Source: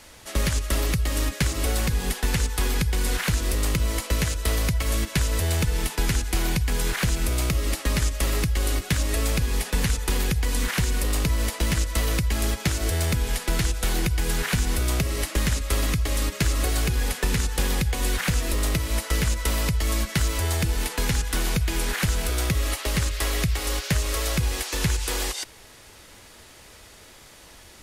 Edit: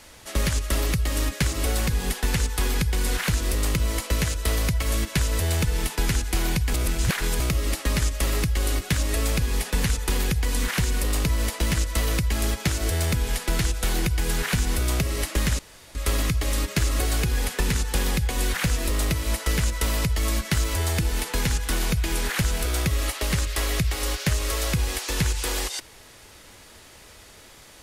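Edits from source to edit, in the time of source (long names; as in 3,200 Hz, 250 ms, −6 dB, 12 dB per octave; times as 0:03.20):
0:06.74–0:07.40: reverse
0:15.59: splice in room tone 0.36 s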